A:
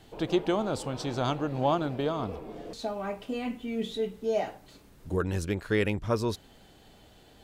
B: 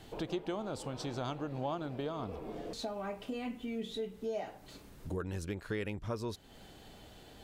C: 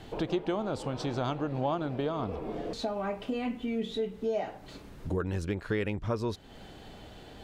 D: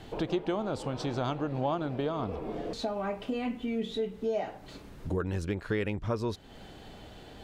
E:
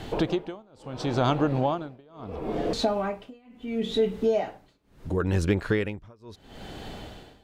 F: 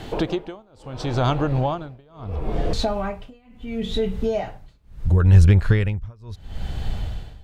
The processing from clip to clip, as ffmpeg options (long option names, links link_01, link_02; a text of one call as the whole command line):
ffmpeg -i in.wav -af "acompressor=threshold=-41dB:ratio=2.5,volume=1.5dB" out.wav
ffmpeg -i in.wav -af "highshelf=frequency=6500:gain=-12,volume=6.5dB" out.wav
ffmpeg -i in.wav -af anull out.wav
ffmpeg -i in.wav -af "tremolo=f=0.73:d=0.98,volume=9dB" out.wav
ffmpeg -i in.wav -af "asubboost=boost=10:cutoff=99,volume=2.5dB" out.wav